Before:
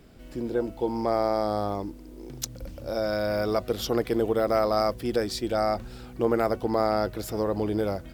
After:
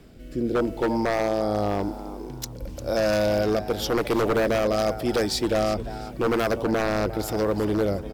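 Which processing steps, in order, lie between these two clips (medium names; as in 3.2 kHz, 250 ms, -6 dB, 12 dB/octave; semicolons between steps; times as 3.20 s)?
rotary cabinet horn 0.9 Hz; frequency-shifting echo 350 ms, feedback 32%, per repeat +110 Hz, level -15 dB; wavefolder -22.5 dBFS; trim +6.5 dB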